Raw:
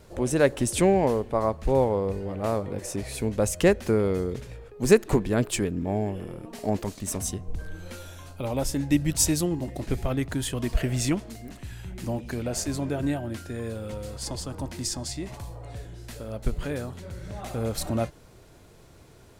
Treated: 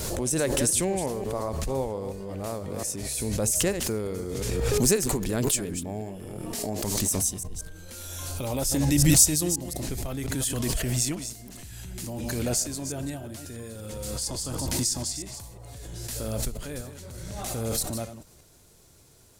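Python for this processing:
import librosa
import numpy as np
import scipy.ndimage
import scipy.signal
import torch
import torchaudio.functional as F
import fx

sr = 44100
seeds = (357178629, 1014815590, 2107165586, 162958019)

y = fx.reverse_delay(x, sr, ms=177, wet_db=-10)
y = fx.bass_treble(y, sr, bass_db=1, treble_db=14)
y = fx.pre_swell(y, sr, db_per_s=21.0)
y = y * 10.0 ** (-8.0 / 20.0)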